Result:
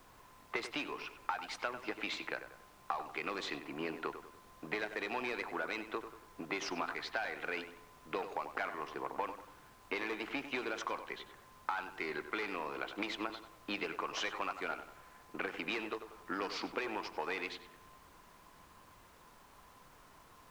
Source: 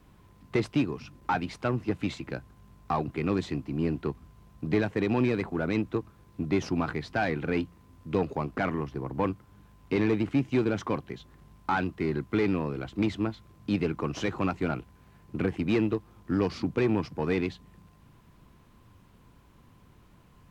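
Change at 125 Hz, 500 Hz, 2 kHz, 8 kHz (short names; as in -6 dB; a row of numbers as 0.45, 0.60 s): -27.0 dB, -11.5 dB, -2.5 dB, n/a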